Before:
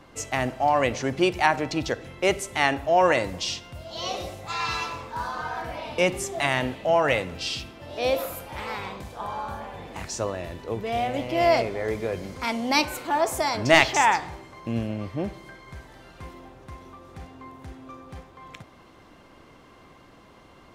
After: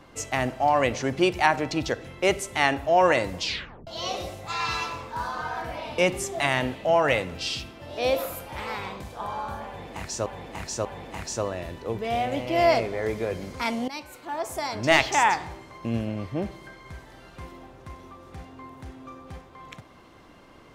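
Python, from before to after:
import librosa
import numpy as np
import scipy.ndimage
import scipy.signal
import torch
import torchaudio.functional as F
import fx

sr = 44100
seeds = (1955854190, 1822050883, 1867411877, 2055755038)

y = fx.edit(x, sr, fx.tape_stop(start_s=3.42, length_s=0.45),
    fx.repeat(start_s=9.67, length_s=0.59, count=3),
    fx.fade_in_from(start_s=12.7, length_s=1.52, floor_db=-18.0), tone=tone)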